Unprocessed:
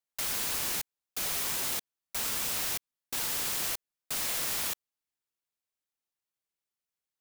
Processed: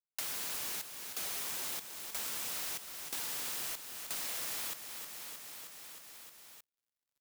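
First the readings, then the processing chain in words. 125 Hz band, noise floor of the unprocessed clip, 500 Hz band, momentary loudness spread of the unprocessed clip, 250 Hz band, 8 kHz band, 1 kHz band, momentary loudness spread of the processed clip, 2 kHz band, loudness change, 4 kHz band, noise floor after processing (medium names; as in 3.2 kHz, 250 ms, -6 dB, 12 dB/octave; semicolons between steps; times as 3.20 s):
-11.0 dB, under -85 dBFS, -6.5 dB, 7 LU, -8.0 dB, -6.0 dB, -6.0 dB, 13 LU, -6.0 dB, -7.0 dB, -6.0 dB, under -85 dBFS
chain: bass shelf 140 Hz -9 dB; reverse; upward compressor, threshold -47 dBFS; reverse; crossover distortion -57.5 dBFS; feedback delay 312 ms, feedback 57%, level -11.5 dB; three bands compressed up and down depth 70%; trim -6.5 dB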